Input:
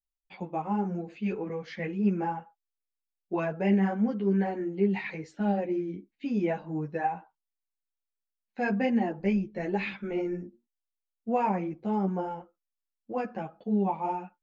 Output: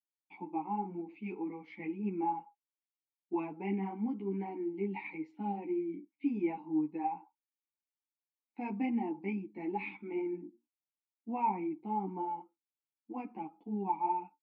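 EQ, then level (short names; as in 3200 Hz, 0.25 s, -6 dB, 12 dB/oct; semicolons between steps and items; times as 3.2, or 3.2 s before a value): vowel filter u; low shelf 320 Hz -4.5 dB; high shelf 4300 Hz -6 dB; +7.5 dB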